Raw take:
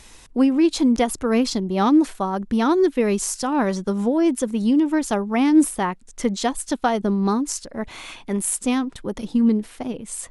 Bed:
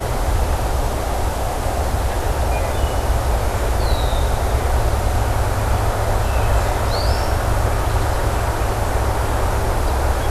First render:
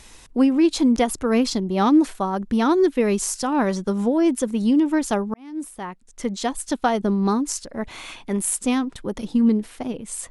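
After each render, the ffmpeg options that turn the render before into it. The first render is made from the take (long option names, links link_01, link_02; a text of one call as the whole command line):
ffmpeg -i in.wav -filter_complex "[0:a]asplit=2[link_01][link_02];[link_01]atrim=end=5.34,asetpts=PTS-STARTPTS,afade=type=out:start_time=5.336:duration=0.004:curve=hsin[link_03];[link_02]atrim=start=5.34,asetpts=PTS-STARTPTS,afade=type=in:duration=1.46[link_04];[link_03][link_04]concat=n=2:v=0:a=1" out.wav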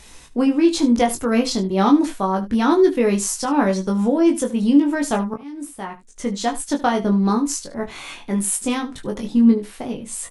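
ffmpeg -i in.wav -filter_complex "[0:a]asplit=2[link_01][link_02];[link_02]adelay=21,volume=-4dB[link_03];[link_01][link_03]amix=inputs=2:normalize=0,aecho=1:1:14|74:0.376|0.168" out.wav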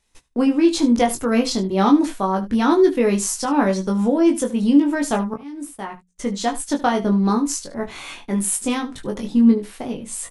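ffmpeg -i in.wav -af "agate=range=-24dB:threshold=-39dB:ratio=16:detection=peak,bandreject=frequency=60:width_type=h:width=6,bandreject=frequency=120:width_type=h:width=6,bandreject=frequency=180:width_type=h:width=6" out.wav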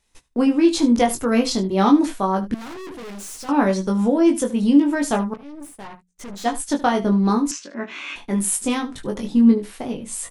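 ffmpeg -i in.wav -filter_complex "[0:a]asettb=1/sr,asplit=3[link_01][link_02][link_03];[link_01]atrim=end=2.544[link_04];[link_02]atrim=start=2.54:end=3.49,asetpts=PTS-STARTPTS,afade=type=in:duration=0.004:curve=qsin,afade=type=out:start_time=0.946:duration=0.004:curve=qsin,aeval=exprs='(tanh(50.1*val(0)+0.4)-tanh(0.4))/50.1':channel_layout=same[link_05];[link_03]atrim=start=3.486[link_06];[link_04][link_05]acrossfade=duration=0.004:curve1=hsin:curve2=qsin[link_07];[link_07][link_06]acrossfade=duration=0.004:curve1=qsin:curve2=hsin,asplit=3[link_08][link_09][link_10];[link_08]afade=type=out:start_time=5.33:duration=0.02[link_11];[link_09]aeval=exprs='(tanh(44.7*val(0)+0.65)-tanh(0.65))/44.7':channel_layout=same,afade=type=in:start_time=5.33:duration=0.02,afade=type=out:start_time=6.44:duration=0.02[link_12];[link_10]afade=type=in:start_time=6.44:duration=0.02[link_13];[link_11][link_12][link_13]amix=inputs=3:normalize=0,asettb=1/sr,asplit=3[link_14][link_15][link_16];[link_14]atrim=end=7.514[link_17];[link_15]atrim=start=7.51:end=8.16,asetpts=PTS-STARTPTS,afade=type=in:duration=0.004:curve=qsin,afade=type=out:start_time=0.646:duration=0.004:curve=qsin,highpass=frequency=230:width=0.5412,highpass=frequency=230:width=1.3066,equalizer=frequency=260:width_type=q:width=4:gain=5,equalizer=frequency=470:width_type=q:width=4:gain=-7,equalizer=frequency=780:width_type=q:width=4:gain=-9,equalizer=frequency=1600:width_type=q:width=4:gain=4,equalizer=frequency=2600:width_type=q:width=4:gain=8,equalizer=frequency=4400:width_type=q:width=4:gain=-7,lowpass=frequency=6000:width=0.5412,lowpass=frequency=6000:width=1.3066[link_18];[link_16]atrim=start=8.156[link_19];[link_17][link_18]acrossfade=duration=0.004:curve1=hsin:curve2=qsin[link_20];[link_20][link_19]acrossfade=duration=0.004:curve1=qsin:curve2=hsin" out.wav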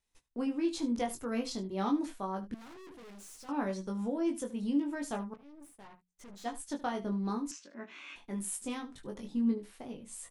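ffmpeg -i in.wav -af "volume=-16dB" out.wav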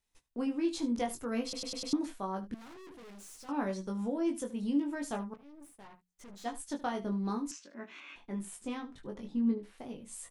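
ffmpeg -i in.wav -filter_complex "[0:a]asettb=1/sr,asplit=3[link_01][link_02][link_03];[link_01]atrim=end=8.004[link_04];[link_02]atrim=start=8:end=9.78,asetpts=PTS-STARTPTS,afade=type=in:duration=0.004:curve=qsin,afade=type=out:start_time=1.776:duration=0.004:curve=qsin,aemphasis=mode=reproduction:type=50kf[link_05];[link_03]atrim=start=9.776[link_06];[link_04][link_05]acrossfade=duration=0.004:curve1=hsin:curve2=qsin[link_07];[link_07][link_06]acrossfade=duration=0.004:curve1=qsin:curve2=hsin,asplit=6[link_08][link_09][link_10][link_11][link_12][link_13];[link_08]atrim=end=1.532[link_14];[link_09]atrim=start=1.428:end=1.532[link_15];[link_10]atrim=start=1.428:end=1.532[link_16];[link_11]atrim=start=1.428:end=1.532[link_17];[link_12]atrim=start=1.428:end=1.532[link_18];[link_13]atrim=start=1.928[link_19];[link_14][link_15]acrossfade=duration=0.004:curve1=hsin:curve2=hsin[link_20];[link_20][link_16]acrossfade=duration=0.004:curve1=hsin:curve2=hsin[link_21];[link_21][link_17]acrossfade=duration=0.004:curve1=hsin:curve2=hsin[link_22];[link_22][link_18]acrossfade=duration=0.004:curve1=hsin:curve2=hsin[link_23];[link_23][link_19]acrossfade=duration=0.004:curve1=hsin:curve2=hsin" out.wav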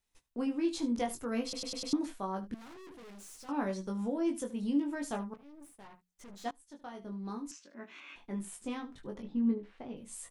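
ffmpeg -i in.wav -filter_complex "[0:a]asettb=1/sr,asplit=3[link_01][link_02][link_03];[link_01]atrim=end=9.224[link_04];[link_02]atrim=start=9.22:end=9.97,asetpts=PTS-STARTPTS,afade=type=in:duration=0.004:curve=qsin,afade=type=out:start_time=0.746:duration=0.004:curve=qsin,lowpass=3300[link_05];[link_03]atrim=start=9.966[link_06];[link_04][link_05]acrossfade=duration=0.004:curve1=hsin:curve2=qsin[link_07];[link_07][link_06]acrossfade=duration=0.004:curve1=qsin:curve2=hsin,asplit=2[link_08][link_09];[link_08]atrim=end=6.51,asetpts=PTS-STARTPTS,afade=type=out:start_time=6.506:duration=0.004:curve=hsin:silence=0.0749894[link_10];[link_09]atrim=start=6.51,asetpts=PTS-STARTPTS,afade=type=in:duration=1.71:silence=0.0749894[link_11];[link_10][link_11]concat=n=2:v=0:a=1" out.wav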